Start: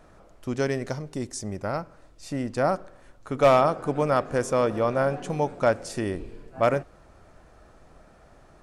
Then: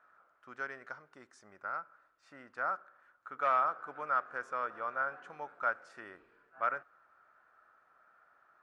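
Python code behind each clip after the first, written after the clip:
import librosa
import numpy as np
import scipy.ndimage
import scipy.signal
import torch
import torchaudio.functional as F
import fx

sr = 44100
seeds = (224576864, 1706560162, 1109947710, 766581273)

y = fx.bandpass_q(x, sr, hz=1400.0, q=4.8)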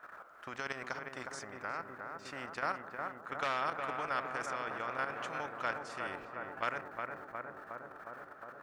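y = fx.level_steps(x, sr, step_db=11)
y = fx.echo_filtered(y, sr, ms=361, feedback_pct=71, hz=1400.0, wet_db=-7.5)
y = fx.spectral_comp(y, sr, ratio=2.0)
y = y * 10.0 ** (4.0 / 20.0)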